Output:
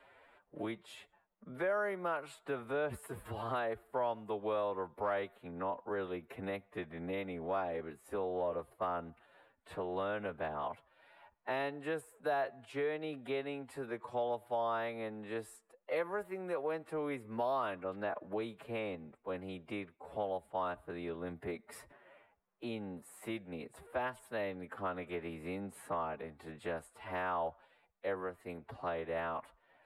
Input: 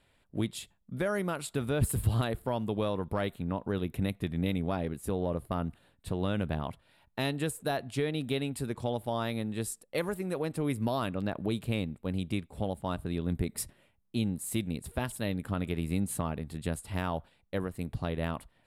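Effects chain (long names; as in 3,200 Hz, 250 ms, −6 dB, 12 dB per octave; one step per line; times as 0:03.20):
three-way crossover with the lows and the highs turned down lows −21 dB, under 420 Hz, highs −19 dB, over 2,200 Hz
phase-vocoder stretch with locked phases 1.6×
multiband upward and downward compressor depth 40%
level +1 dB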